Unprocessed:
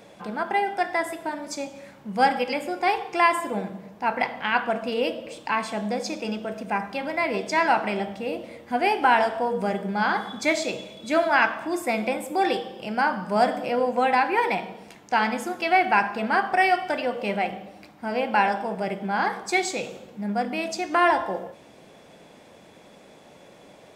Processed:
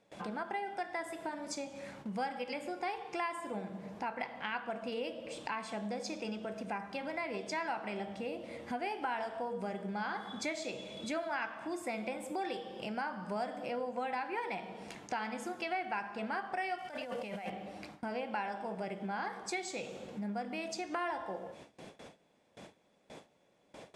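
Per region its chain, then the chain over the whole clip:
16.78–17.50 s: peaking EQ 350 Hz -8.5 dB 0.3 oct + compressor with a negative ratio -33 dBFS + companded quantiser 6-bit
whole clip: low-pass 11 kHz 24 dB/octave; gate with hold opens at -39 dBFS; compression 3:1, threshold -40 dBFS

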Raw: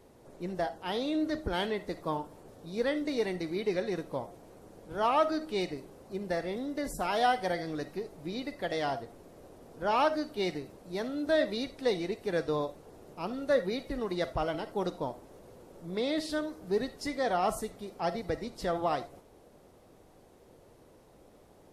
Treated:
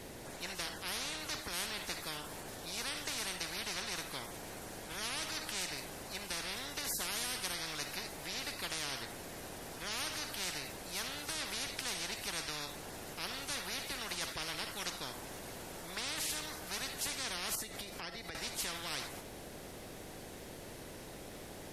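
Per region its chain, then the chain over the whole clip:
17.55–18.35 s: compression, threshold -46 dBFS + transient shaper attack +3 dB, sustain -2 dB
whole clip: high-order bell 780 Hz -8.5 dB; spectrum-flattening compressor 10:1; trim +1 dB

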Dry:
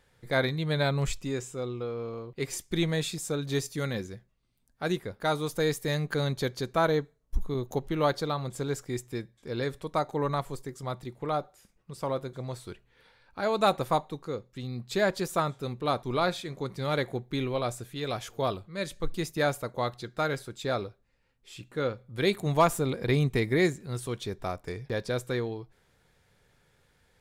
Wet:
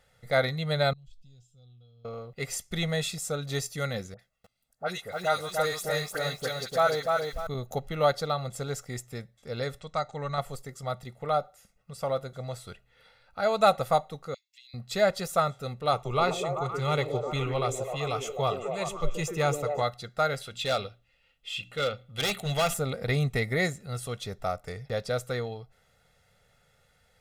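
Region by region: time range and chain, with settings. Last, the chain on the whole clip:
0.93–2.05 s: FFT filter 120 Hz 0 dB, 180 Hz -4 dB, 310 Hz -16 dB, 1.4 kHz -29 dB, 2.1 kHz -30 dB, 3.3 kHz -3 dB, 8.1 kHz -19 dB + compression, threshold -37 dBFS + feedback comb 730 Hz, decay 0.18 s, mix 80%
4.14–7.47 s: bass shelf 270 Hz -11 dB + phase dispersion highs, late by 51 ms, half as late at 1.4 kHz + bit-crushed delay 297 ms, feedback 35%, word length 9-bit, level -3 dB
9.81–10.38 s: steep low-pass 8.5 kHz 72 dB/octave + peaking EQ 500 Hz -6.5 dB 2.5 oct
14.34–14.74 s: steep high-pass 2.2 kHz 48 dB/octave + peaking EQ 11 kHz -13.5 dB 0.66 oct + compression 4:1, threshold -50 dBFS
15.92–19.82 s: rippled EQ curve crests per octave 0.71, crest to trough 10 dB + repeats whose band climbs or falls 128 ms, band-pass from 320 Hz, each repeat 0.7 oct, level 0 dB
20.41–22.74 s: peaking EQ 3 kHz +14.5 dB 0.79 oct + overload inside the chain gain 24 dB + hum notches 60/120/180/240/300 Hz
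whole clip: bass shelf 180 Hz -5.5 dB; comb 1.5 ms, depth 75%

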